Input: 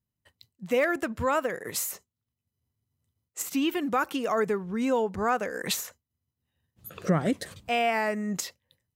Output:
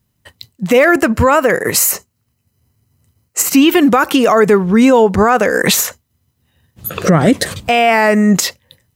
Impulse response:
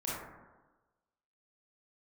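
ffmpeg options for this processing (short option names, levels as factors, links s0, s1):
-filter_complex "[0:a]asettb=1/sr,asplit=3[s0][s1][s2];[s0]atrim=end=0.834[s3];[s1]atrim=start=0.83:end=3.62,asetpts=PTS-STARTPTS,afade=t=in:d=0.004:c=qsin,afade=t=out:st=2.786:d=0.004:c=qsin,bandreject=f=3500:w=5.5[s4];[s2]atrim=start=3.616[s5];[s3][s4]acrossfade=d=0.004:c1=hsin:c2=qsin[s6];[s6][s5]acrossfade=d=0.004:c1=qsin:c2=hsin,alimiter=level_in=11.9:limit=0.891:release=50:level=0:latency=1,volume=0.891"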